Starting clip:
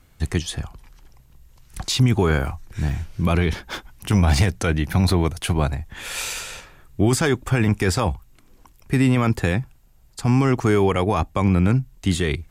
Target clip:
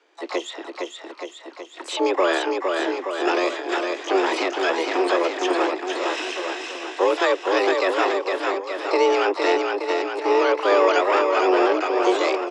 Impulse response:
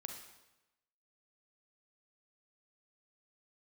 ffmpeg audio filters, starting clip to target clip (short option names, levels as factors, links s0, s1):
-filter_complex "[0:a]aecho=1:1:460|874|1247|1582|1884:0.631|0.398|0.251|0.158|0.1,highpass=f=170:t=q:w=0.5412,highpass=f=170:t=q:w=1.307,lowpass=f=3400:t=q:w=0.5176,lowpass=f=3400:t=q:w=0.7071,lowpass=f=3400:t=q:w=1.932,afreqshift=180,asplit=2[s0][s1];[s1]asetrate=88200,aresample=44100,atempo=0.5,volume=0.447[s2];[s0][s2]amix=inputs=2:normalize=0"